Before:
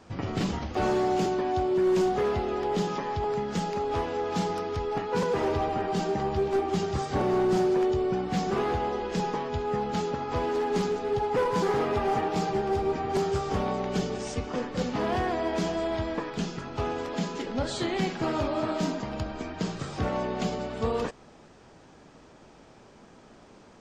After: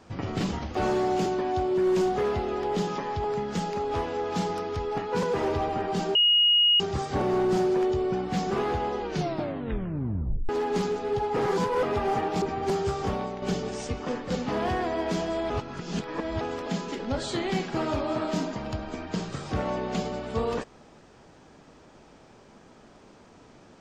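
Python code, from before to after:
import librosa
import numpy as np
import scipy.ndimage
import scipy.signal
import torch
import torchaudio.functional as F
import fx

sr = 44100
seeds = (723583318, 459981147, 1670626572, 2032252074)

y = fx.edit(x, sr, fx.bleep(start_s=6.15, length_s=0.65, hz=2880.0, db=-17.0),
    fx.tape_stop(start_s=9.01, length_s=1.48),
    fx.reverse_span(start_s=11.37, length_s=0.46),
    fx.cut(start_s=12.42, length_s=0.47),
    fx.fade_out_to(start_s=13.53, length_s=0.36, floor_db=-7.0),
    fx.reverse_span(start_s=15.97, length_s=0.91), tone=tone)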